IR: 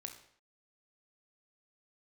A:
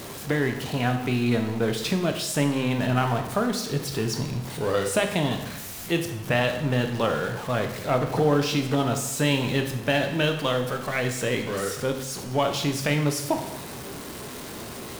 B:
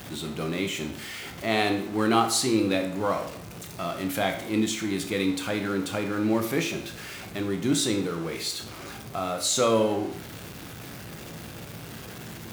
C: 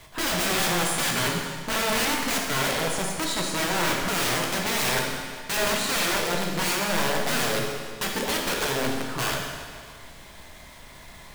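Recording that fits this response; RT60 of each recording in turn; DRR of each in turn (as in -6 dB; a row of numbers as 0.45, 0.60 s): B; 0.90, 0.60, 1.8 s; 5.0, 4.5, -1.0 dB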